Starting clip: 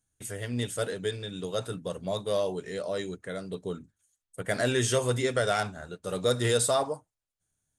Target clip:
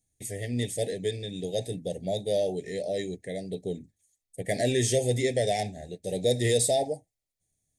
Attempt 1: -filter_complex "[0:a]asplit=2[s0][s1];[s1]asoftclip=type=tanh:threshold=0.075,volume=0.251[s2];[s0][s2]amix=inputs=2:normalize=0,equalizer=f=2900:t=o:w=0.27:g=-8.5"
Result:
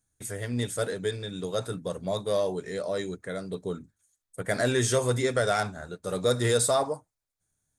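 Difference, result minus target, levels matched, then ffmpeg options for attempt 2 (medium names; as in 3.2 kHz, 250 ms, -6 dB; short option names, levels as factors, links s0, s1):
1 kHz band +3.0 dB
-filter_complex "[0:a]asplit=2[s0][s1];[s1]asoftclip=type=tanh:threshold=0.075,volume=0.251[s2];[s0][s2]amix=inputs=2:normalize=0,asuperstop=centerf=1200:order=12:qfactor=1.2,equalizer=f=2900:t=o:w=0.27:g=-8.5"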